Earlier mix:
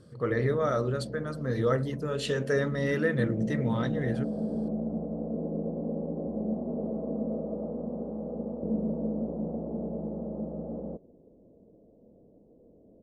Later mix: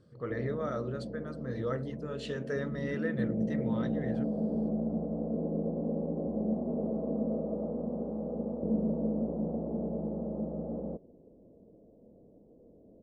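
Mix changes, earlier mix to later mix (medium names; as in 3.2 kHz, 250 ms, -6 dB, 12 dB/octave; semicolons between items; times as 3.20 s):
speech -7.5 dB; master: add distance through air 64 m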